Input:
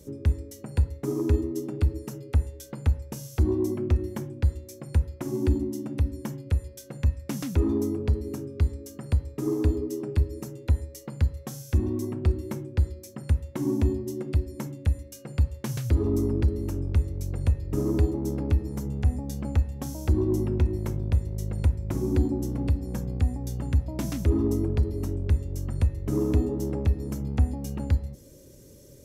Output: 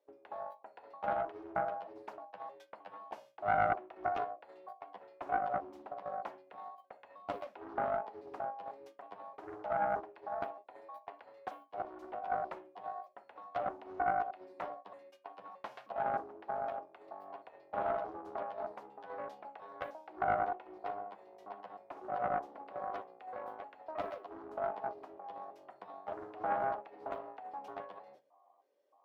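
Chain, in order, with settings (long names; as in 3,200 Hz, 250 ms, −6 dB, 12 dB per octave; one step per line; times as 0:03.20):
pitch shifter gated in a rhythm +12 semitones, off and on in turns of 311 ms
noise gate −41 dBFS, range −17 dB
reversed playback
downward compressor 6 to 1, threshold −32 dBFS, peak gain reduction 15 dB
reversed playback
four-pole ladder high-pass 640 Hz, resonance 55%
high-frequency loss of the air 400 metres
on a send at −8 dB: convolution reverb RT60 0.20 s, pre-delay 3 ms
on the sum: highs frequency-modulated by the lows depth 0.33 ms
level +10.5 dB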